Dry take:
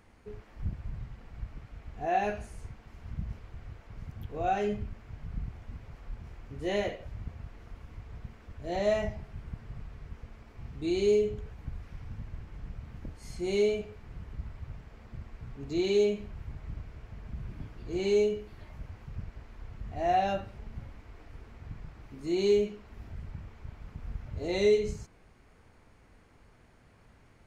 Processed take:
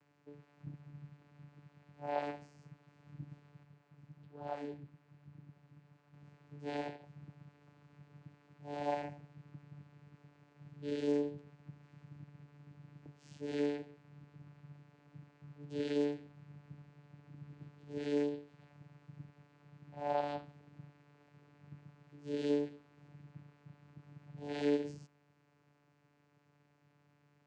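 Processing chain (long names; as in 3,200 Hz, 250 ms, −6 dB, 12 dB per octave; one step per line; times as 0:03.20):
spectral tilt +2.5 dB per octave
channel vocoder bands 8, saw 145 Hz
0:03.63–0:06.14: flanger 1.2 Hz, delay 0.2 ms, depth 7.8 ms, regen +68%
level −4.5 dB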